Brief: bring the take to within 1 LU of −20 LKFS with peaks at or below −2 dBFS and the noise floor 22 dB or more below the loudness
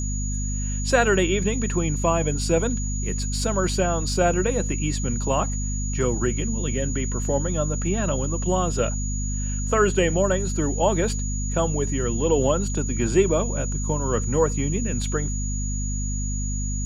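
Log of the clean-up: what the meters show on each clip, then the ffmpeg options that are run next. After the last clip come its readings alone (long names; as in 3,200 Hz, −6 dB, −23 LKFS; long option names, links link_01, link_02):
mains hum 50 Hz; hum harmonics up to 250 Hz; level of the hum −24 dBFS; interfering tone 6,800 Hz; level of the tone −32 dBFS; integrated loudness −24.0 LKFS; sample peak −5.0 dBFS; target loudness −20.0 LKFS
→ -af "bandreject=frequency=50:width_type=h:width=6,bandreject=frequency=100:width_type=h:width=6,bandreject=frequency=150:width_type=h:width=6,bandreject=frequency=200:width_type=h:width=6,bandreject=frequency=250:width_type=h:width=6"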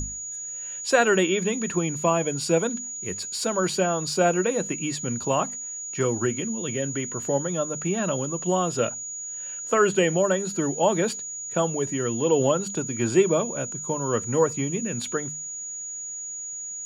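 mains hum none found; interfering tone 6,800 Hz; level of the tone −32 dBFS
→ -af "bandreject=frequency=6800:width=30"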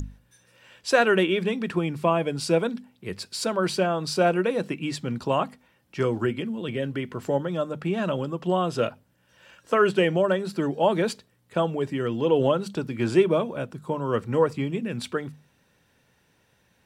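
interfering tone none found; integrated loudness −25.5 LKFS; sample peak −6.0 dBFS; target loudness −20.0 LKFS
→ -af "volume=5.5dB,alimiter=limit=-2dB:level=0:latency=1"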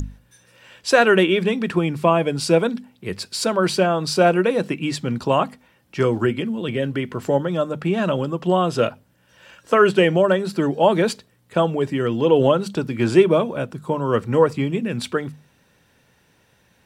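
integrated loudness −20.0 LKFS; sample peak −2.0 dBFS; background noise floor −60 dBFS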